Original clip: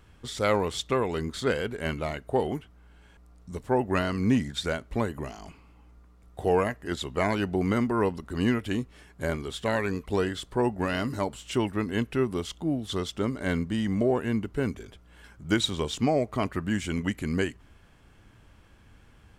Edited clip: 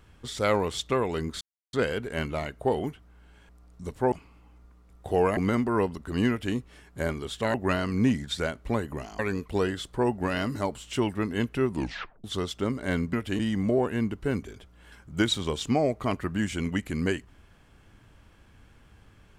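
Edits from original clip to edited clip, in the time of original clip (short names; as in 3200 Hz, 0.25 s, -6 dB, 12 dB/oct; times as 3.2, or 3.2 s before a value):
1.41 insert silence 0.32 s
3.8–5.45 move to 9.77
6.7–7.6 cut
8.52–8.78 copy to 13.71
12.28 tape stop 0.54 s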